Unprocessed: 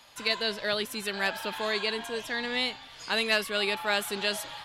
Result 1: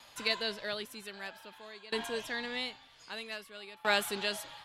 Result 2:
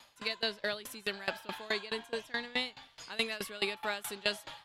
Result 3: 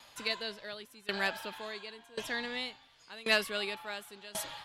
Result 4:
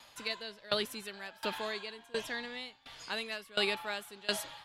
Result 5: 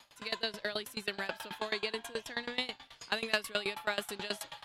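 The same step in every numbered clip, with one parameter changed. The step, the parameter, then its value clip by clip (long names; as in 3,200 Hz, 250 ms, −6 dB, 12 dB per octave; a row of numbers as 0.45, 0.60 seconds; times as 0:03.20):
tremolo with a ramp in dB, speed: 0.52, 4.7, 0.92, 1.4, 9.3 Hertz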